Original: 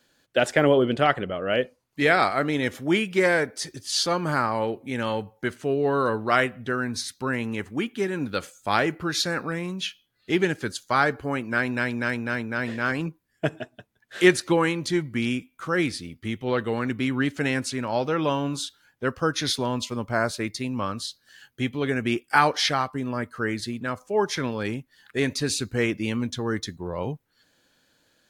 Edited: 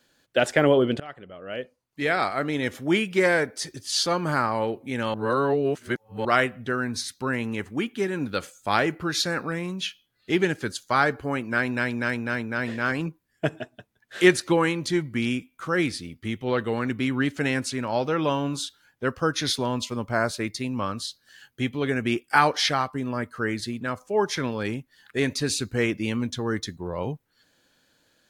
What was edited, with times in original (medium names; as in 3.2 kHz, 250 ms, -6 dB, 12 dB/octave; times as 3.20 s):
1.00–2.94 s: fade in, from -23 dB
5.14–6.25 s: reverse